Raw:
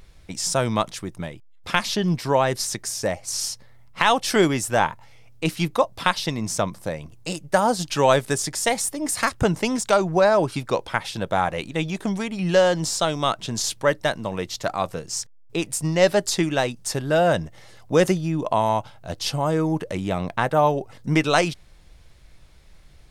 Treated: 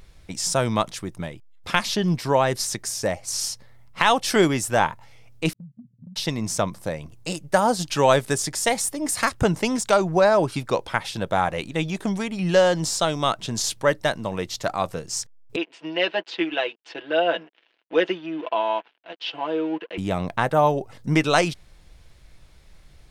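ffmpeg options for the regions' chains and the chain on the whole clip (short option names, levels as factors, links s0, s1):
-filter_complex "[0:a]asettb=1/sr,asplit=3[s0][s1][s2];[s0]atrim=end=5.534[s3];[s1]atrim=start=5.53:end=6.16,asetpts=PTS-STARTPTS,afade=t=in:d=0.004:c=qsin,afade=t=out:st=0.626:d=0.004:c=qsin,asuperpass=centerf=160:order=20:qfactor=1.1,acompressor=threshold=0.0126:ratio=12:attack=3.2:release=140:knee=1:detection=peak,agate=range=0.0224:threshold=0.00282:ratio=3:release=100:detection=peak[s4];[s2]atrim=start=6.156[s5];[s3][s4]acrossfade=d=0.004:c1=hsin:c2=qsin[s6];[s6][s5]acrossfade=d=0.004:c1=qsin:c2=hsin,asettb=1/sr,asplit=3[s7][s8][s9];[s7]atrim=end=15.564[s10];[s8]atrim=start=15.56:end=19.98,asetpts=PTS-STARTPTS,afade=t=in:d=0.004:c=qsin,afade=t=out:st=4.416:d=0.004:c=qsin,aecho=1:1:6:0.76,atrim=end_sample=194922,aeval=exprs='sgn(val(0))*max(abs(val(0))-0.0126,0)':c=same,highpass=f=340:w=0.5412,highpass=f=340:w=1.3066,equalizer=f=380:t=q:w=4:g=-3,equalizer=f=550:t=q:w=4:g=-7,equalizer=f=790:t=q:w=4:g=-6,equalizer=f=1200:t=q:w=4:g=-8,equalizer=f=2000:t=q:w=4:g=-3,equalizer=f=2900:t=q:w=4:g=6,lowpass=f=3200:w=0.5412,lowpass=f=3200:w=1.3066[s11];[s9]atrim=start=19.976[s12];[s10][s11]acrossfade=d=0.004:c1=hsin:c2=qsin[s13];[s13][s12]acrossfade=d=0.004:c1=qsin:c2=hsin"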